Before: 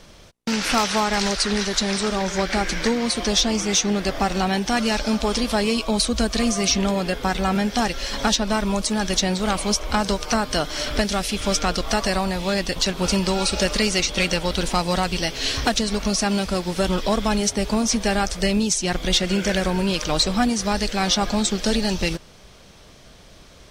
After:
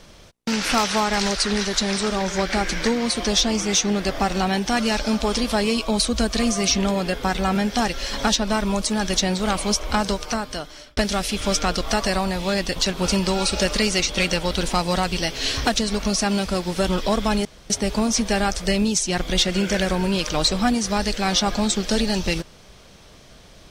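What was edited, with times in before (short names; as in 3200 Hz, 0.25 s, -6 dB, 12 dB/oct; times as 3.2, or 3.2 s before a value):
10–10.97 fade out
17.45 insert room tone 0.25 s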